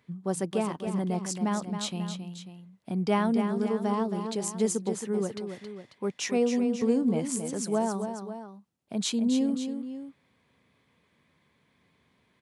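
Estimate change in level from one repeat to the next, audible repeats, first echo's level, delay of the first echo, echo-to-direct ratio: -4.5 dB, 2, -8.0 dB, 0.271 s, -6.5 dB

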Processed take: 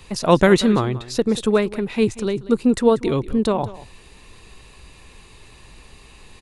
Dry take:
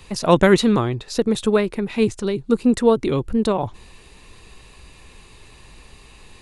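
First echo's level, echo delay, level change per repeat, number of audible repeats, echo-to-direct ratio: -17.5 dB, 0.187 s, no steady repeat, 1, -17.5 dB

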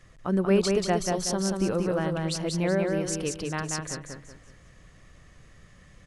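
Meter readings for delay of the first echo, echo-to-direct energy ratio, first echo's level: 0.186 s, -3.0 dB, -3.5 dB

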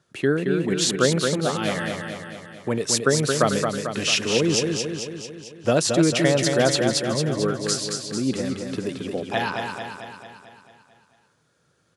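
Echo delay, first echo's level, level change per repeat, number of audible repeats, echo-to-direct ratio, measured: 0.222 s, -5.0 dB, -4.5 dB, 7, -3.0 dB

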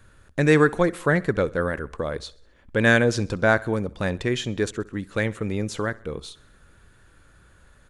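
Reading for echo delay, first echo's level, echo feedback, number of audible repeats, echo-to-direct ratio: 65 ms, -22.0 dB, 52%, 3, -20.5 dB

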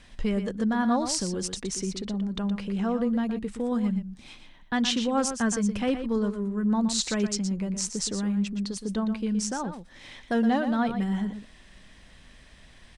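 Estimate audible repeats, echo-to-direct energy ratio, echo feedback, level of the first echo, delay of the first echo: 1, -9.5 dB, no steady repeat, -9.5 dB, 0.119 s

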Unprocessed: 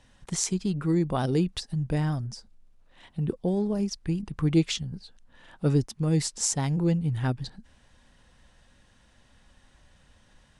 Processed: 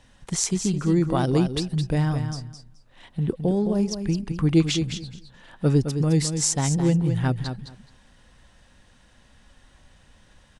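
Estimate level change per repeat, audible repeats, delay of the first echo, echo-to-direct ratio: -16.0 dB, 2, 0.213 s, -8.0 dB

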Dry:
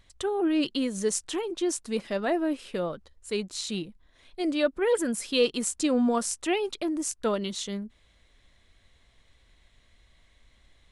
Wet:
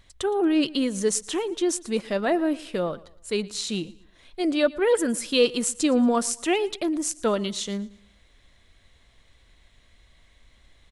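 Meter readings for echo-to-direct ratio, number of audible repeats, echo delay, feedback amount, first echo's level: -20.5 dB, 2, 0.115 s, 36%, -21.0 dB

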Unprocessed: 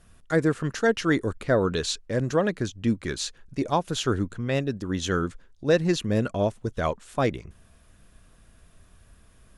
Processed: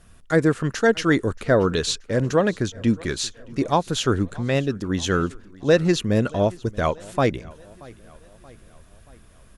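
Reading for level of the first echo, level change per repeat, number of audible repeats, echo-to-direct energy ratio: -23.0 dB, -5.5 dB, 3, -21.5 dB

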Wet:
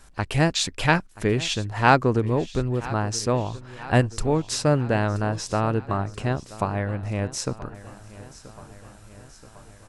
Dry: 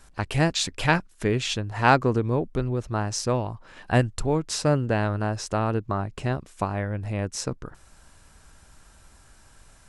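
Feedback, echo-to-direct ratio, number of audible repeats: 60%, -16.0 dB, 4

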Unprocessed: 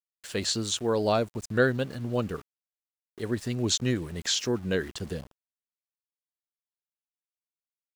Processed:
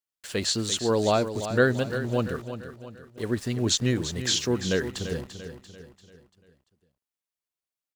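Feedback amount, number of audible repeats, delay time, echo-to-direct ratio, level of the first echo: 46%, 4, 0.342 s, -9.5 dB, -10.5 dB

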